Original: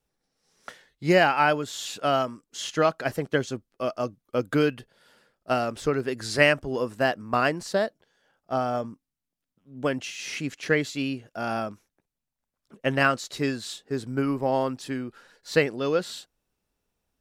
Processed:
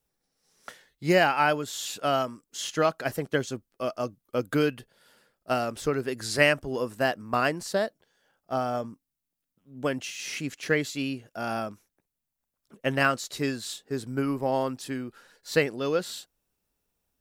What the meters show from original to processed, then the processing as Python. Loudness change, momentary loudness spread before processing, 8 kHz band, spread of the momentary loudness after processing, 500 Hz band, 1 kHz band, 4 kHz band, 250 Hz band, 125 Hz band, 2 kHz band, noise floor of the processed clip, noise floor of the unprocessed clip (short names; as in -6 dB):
-2.0 dB, 12 LU, +1.5 dB, 12 LU, -2.0 dB, -2.0 dB, -1.0 dB, -2.0 dB, -2.0 dB, -1.5 dB, -84 dBFS, -85 dBFS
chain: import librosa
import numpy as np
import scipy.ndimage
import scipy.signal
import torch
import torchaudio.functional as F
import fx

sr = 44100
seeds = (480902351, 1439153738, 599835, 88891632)

y = fx.high_shelf(x, sr, hz=9700.0, db=11.0)
y = y * librosa.db_to_amplitude(-2.0)